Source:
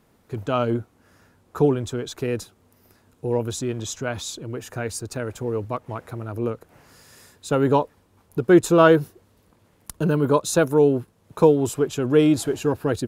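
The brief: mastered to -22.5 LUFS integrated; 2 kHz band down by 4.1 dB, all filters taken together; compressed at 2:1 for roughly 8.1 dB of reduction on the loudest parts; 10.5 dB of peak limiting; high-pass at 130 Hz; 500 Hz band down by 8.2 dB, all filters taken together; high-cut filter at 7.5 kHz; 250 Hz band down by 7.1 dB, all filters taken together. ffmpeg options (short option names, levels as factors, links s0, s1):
-af "highpass=130,lowpass=7500,equalizer=f=250:t=o:g=-6,equalizer=f=500:t=o:g=-8,equalizer=f=2000:t=o:g=-5.5,acompressor=threshold=0.0316:ratio=2,volume=5.31,alimiter=limit=0.266:level=0:latency=1"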